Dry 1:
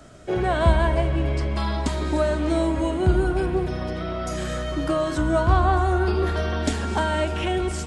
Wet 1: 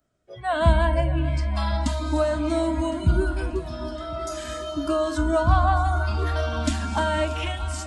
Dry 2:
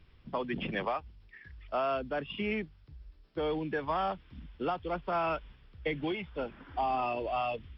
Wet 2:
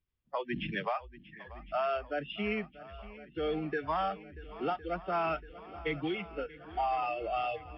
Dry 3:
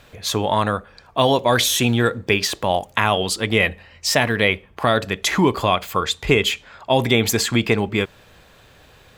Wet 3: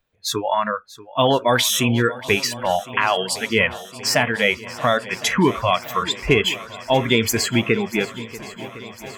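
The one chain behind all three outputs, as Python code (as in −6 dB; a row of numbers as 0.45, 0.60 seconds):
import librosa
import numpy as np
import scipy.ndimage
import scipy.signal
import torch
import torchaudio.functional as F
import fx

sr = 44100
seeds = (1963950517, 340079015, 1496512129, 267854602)

y = fx.noise_reduce_blind(x, sr, reduce_db=27)
y = fx.echo_swing(y, sr, ms=1060, ratio=1.5, feedback_pct=67, wet_db=-18)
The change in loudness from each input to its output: −1.0, −0.5, −0.5 LU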